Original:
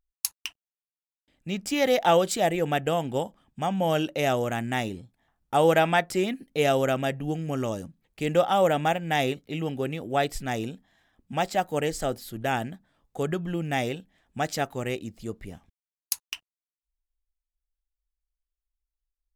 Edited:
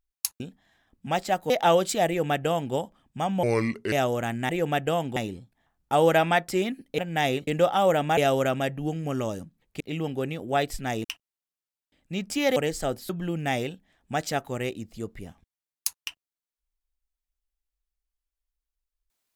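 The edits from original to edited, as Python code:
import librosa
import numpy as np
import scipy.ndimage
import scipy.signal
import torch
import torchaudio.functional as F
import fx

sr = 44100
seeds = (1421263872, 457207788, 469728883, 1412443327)

y = fx.edit(x, sr, fx.swap(start_s=0.4, length_s=1.52, other_s=10.66, other_length_s=1.1),
    fx.duplicate(start_s=2.49, length_s=0.67, to_s=4.78),
    fx.speed_span(start_s=3.85, length_s=0.36, speed=0.73),
    fx.swap(start_s=6.6, length_s=1.63, other_s=8.93, other_length_s=0.49),
    fx.cut(start_s=12.29, length_s=1.06), tone=tone)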